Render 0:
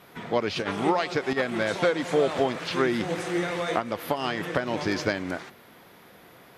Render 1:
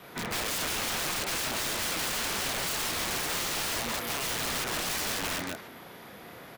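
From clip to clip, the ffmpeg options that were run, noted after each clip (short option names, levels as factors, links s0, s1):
-filter_complex "[0:a]asplit=2[s0][s1];[s1]aecho=0:1:34.99|180.8:0.708|0.398[s2];[s0][s2]amix=inputs=2:normalize=0,acrossover=split=150|1300|4600[s3][s4][s5][s6];[s3]acompressor=threshold=0.00501:ratio=4[s7];[s4]acompressor=threshold=0.0398:ratio=4[s8];[s5]acompressor=threshold=0.0282:ratio=4[s9];[s6]acompressor=threshold=0.00631:ratio=4[s10];[s7][s8][s9][s10]amix=inputs=4:normalize=0,aeval=exprs='(mod(28.2*val(0)+1,2)-1)/28.2':c=same,volume=1.33"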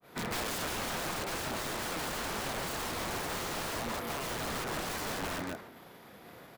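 -filter_complex "[0:a]agate=range=0.0224:threshold=0.00794:ratio=3:detection=peak,asplit=2[s0][s1];[s1]acrusher=samples=14:mix=1:aa=0.000001,volume=0.316[s2];[s0][s2]amix=inputs=2:normalize=0,adynamicequalizer=threshold=0.00398:dfrequency=2100:dqfactor=0.7:tfrequency=2100:tqfactor=0.7:attack=5:release=100:ratio=0.375:range=3:mode=cutabove:tftype=highshelf,volume=0.708"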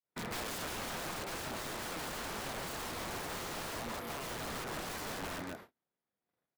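-af "agate=range=0.0158:threshold=0.00501:ratio=16:detection=peak,volume=0.596"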